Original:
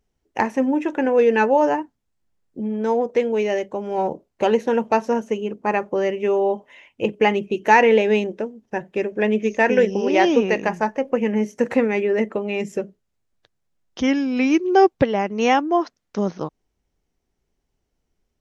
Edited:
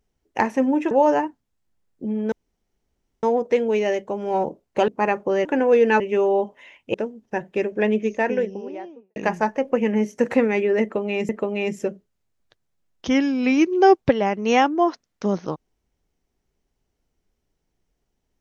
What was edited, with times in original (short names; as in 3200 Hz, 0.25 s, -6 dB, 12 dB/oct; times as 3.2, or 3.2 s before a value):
0.91–1.46 move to 6.11
2.87 insert room tone 0.91 s
4.52–5.54 cut
7.05–8.34 cut
9.03–10.56 studio fade out
12.22–12.69 loop, 2 plays